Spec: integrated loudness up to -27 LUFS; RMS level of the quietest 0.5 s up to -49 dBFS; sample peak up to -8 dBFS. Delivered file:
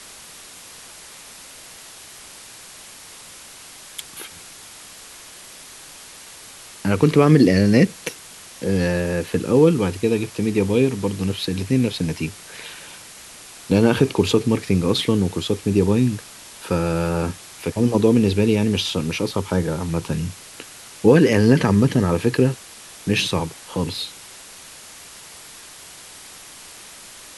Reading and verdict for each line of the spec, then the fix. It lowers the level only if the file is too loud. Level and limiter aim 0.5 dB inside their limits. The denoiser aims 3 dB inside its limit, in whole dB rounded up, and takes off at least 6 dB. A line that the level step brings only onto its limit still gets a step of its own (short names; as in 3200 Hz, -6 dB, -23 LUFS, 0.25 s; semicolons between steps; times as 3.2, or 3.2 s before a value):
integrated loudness -19.5 LUFS: fail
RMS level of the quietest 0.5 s -42 dBFS: fail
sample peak -2.5 dBFS: fail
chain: gain -8 dB